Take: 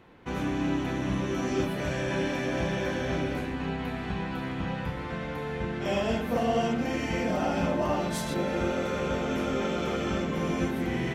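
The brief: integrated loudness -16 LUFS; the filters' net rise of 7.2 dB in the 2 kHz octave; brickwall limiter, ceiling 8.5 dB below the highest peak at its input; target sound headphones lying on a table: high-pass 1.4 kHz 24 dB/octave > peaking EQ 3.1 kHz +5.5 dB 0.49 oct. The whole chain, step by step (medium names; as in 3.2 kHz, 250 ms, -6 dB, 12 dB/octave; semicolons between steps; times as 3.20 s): peaking EQ 2 kHz +8.5 dB; peak limiter -23 dBFS; high-pass 1.4 kHz 24 dB/octave; peaking EQ 3.1 kHz +5.5 dB 0.49 oct; trim +18.5 dB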